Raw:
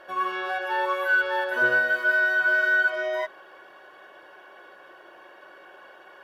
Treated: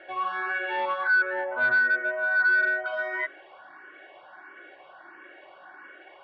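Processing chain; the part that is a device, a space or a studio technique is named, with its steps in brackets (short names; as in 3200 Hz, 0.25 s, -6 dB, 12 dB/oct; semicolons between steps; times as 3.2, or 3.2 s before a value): 1.07–2.86 inverse Chebyshev low-pass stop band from 4600 Hz, stop band 50 dB; barber-pole phaser into a guitar amplifier (endless phaser +1.5 Hz; soft clip -21 dBFS, distortion -16 dB; speaker cabinet 94–3900 Hz, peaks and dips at 96 Hz +6 dB, 300 Hz +7 dB, 480 Hz -4 dB, 750 Hz +5 dB, 1400 Hz +4 dB, 2100 Hz +9 dB)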